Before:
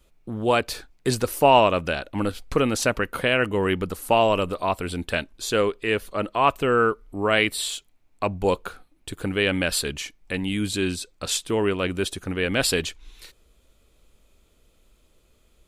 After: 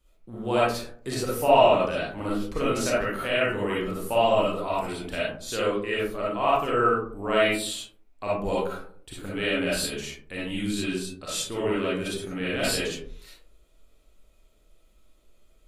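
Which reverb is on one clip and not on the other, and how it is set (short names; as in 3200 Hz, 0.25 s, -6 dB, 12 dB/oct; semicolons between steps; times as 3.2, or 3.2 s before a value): digital reverb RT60 0.56 s, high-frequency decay 0.35×, pre-delay 15 ms, DRR -7.5 dB; gain -11 dB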